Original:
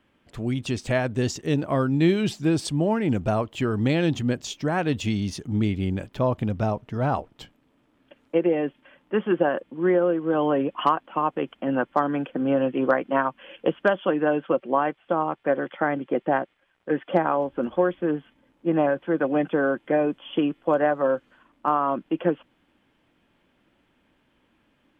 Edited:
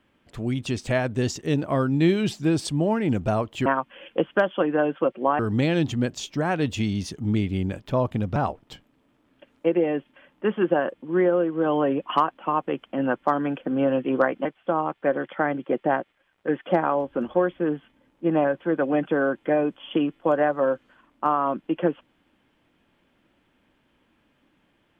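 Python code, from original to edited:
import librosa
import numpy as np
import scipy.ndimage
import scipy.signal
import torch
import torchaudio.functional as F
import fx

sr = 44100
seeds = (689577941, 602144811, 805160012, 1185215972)

y = fx.edit(x, sr, fx.cut(start_s=6.63, length_s=0.42),
    fx.move(start_s=13.14, length_s=1.73, to_s=3.66), tone=tone)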